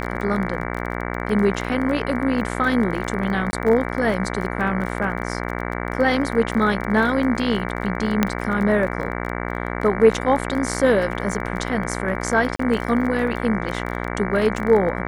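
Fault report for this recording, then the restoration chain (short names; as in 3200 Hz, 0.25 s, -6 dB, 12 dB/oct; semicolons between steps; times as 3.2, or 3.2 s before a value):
buzz 60 Hz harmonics 38 -27 dBFS
crackle 26/s -27 dBFS
3.51–3.53 gap 20 ms
8.23 pop -3 dBFS
12.56–12.59 gap 34 ms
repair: de-click; de-hum 60 Hz, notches 38; interpolate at 3.51, 20 ms; interpolate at 12.56, 34 ms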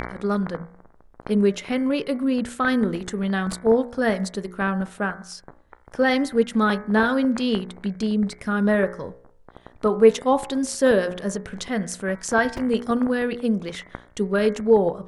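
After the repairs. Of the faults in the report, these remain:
none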